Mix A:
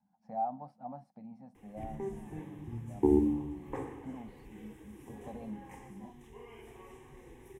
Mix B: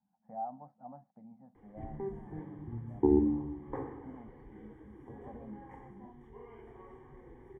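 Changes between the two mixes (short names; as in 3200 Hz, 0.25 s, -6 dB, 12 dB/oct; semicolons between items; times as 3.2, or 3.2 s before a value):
speech -5.0 dB; master: add polynomial smoothing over 41 samples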